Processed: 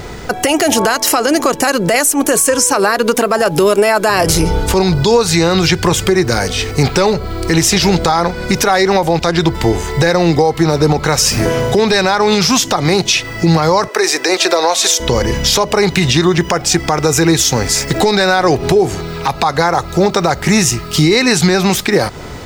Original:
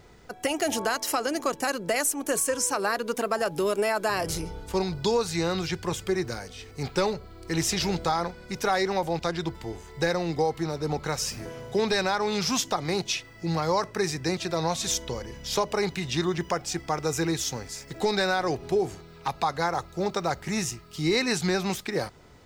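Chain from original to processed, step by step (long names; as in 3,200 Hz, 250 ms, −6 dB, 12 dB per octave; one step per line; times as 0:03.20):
0:13.88–0:15.00: high-pass filter 370 Hz 24 dB per octave
downward compressor 6 to 1, threshold −32 dBFS, peak gain reduction 11.5 dB
boost into a limiter +26 dB
level −1 dB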